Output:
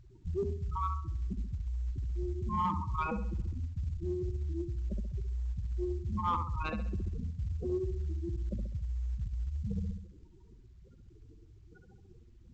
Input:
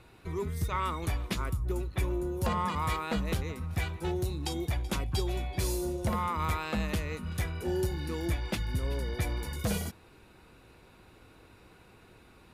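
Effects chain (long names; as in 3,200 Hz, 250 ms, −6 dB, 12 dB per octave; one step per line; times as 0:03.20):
low-shelf EQ 120 Hz +11.5 dB
in parallel at −5.5 dB: comparator with hysteresis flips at −32 dBFS
on the sum: gate on every frequency bin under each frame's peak −10 dB strong
flutter between parallel walls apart 11.4 metres, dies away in 0.59 s
reversed playback
downward compressor 16 to 1, threshold −27 dBFS, peak gain reduction 13 dB
reversed playback
mid-hump overdrive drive 12 dB, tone 5,100 Hz, clips at −20.5 dBFS
mu-law 128 kbit/s 16,000 Hz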